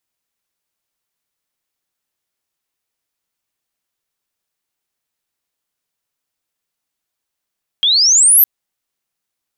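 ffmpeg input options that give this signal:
ffmpeg -f lavfi -i "aevalsrc='pow(10,(-10+5*t/0.61)/20)*sin(2*PI*3200*0.61/log(13000/3200)*(exp(log(13000/3200)*t/0.61)-1))':duration=0.61:sample_rate=44100" out.wav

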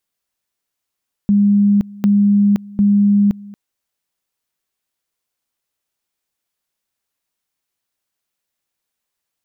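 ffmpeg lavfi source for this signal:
ffmpeg -f lavfi -i "aevalsrc='pow(10,(-9-22.5*gte(mod(t,0.75),0.52))/20)*sin(2*PI*203*t)':duration=2.25:sample_rate=44100" out.wav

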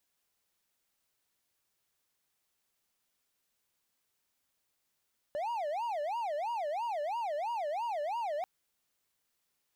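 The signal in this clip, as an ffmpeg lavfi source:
ffmpeg -f lavfi -i "aevalsrc='0.0316*(1-4*abs(mod((767.5*t-187.5/(2*PI*3)*sin(2*PI*3*t))+0.25,1)-0.5))':duration=3.09:sample_rate=44100" out.wav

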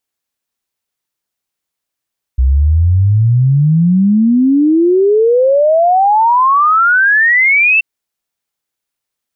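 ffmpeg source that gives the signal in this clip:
ffmpeg -f lavfi -i "aevalsrc='0.473*clip(min(t,5.43-t)/0.01,0,1)*sin(2*PI*62*5.43/log(2700/62)*(exp(log(2700/62)*t/5.43)-1))':duration=5.43:sample_rate=44100" out.wav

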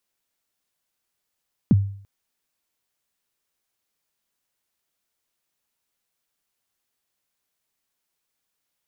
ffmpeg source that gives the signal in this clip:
ffmpeg -f lavfi -i "aevalsrc='0.355*pow(10,-3*t/0.54)*sin(2*PI*(270*0.031/log(99/270)*(exp(log(99/270)*min(t,0.031)/0.031)-1)+99*max(t-0.031,0)))':duration=0.34:sample_rate=44100" out.wav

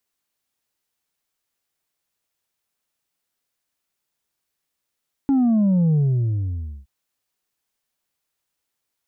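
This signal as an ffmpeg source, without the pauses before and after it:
ffmpeg -f lavfi -i "aevalsrc='0.178*clip((1.57-t)/0.92,0,1)*tanh(1.41*sin(2*PI*280*1.57/log(65/280)*(exp(log(65/280)*t/1.57)-1)))/tanh(1.41)':duration=1.57:sample_rate=44100" out.wav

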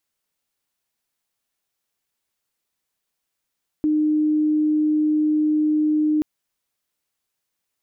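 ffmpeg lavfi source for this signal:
ffmpeg -f lavfi -i "sine=frequency=305:duration=2.38:sample_rate=44100,volume=2.06dB" out.wav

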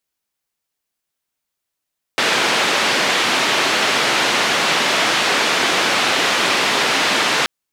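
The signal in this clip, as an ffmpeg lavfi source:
ffmpeg -f lavfi -i "anoisesrc=color=white:duration=5.28:sample_rate=44100:seed=1,highpass=frequency=230,lowpass=frequency=3300,volume=-4dB" out.wav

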